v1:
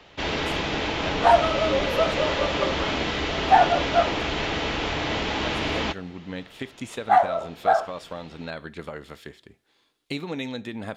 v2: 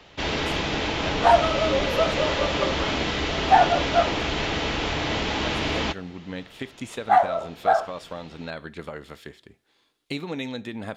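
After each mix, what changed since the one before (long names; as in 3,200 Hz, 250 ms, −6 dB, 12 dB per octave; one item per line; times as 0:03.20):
first sound: add bass and treble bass +2 dB, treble +3 dB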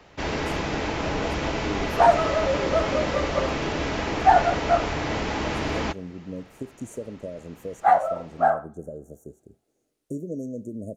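speech: add linear-phase brick-wall band-stop 670–5,700 Hz
second sound: entry +0.75 s
master: add parametric band 3,400 Hz −9 dB 0.88 octaves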